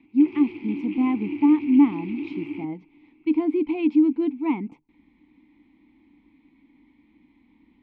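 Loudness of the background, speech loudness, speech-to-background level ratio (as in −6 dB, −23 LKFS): −33.5 LKFS, −22.5 LKFS, 11.0 dB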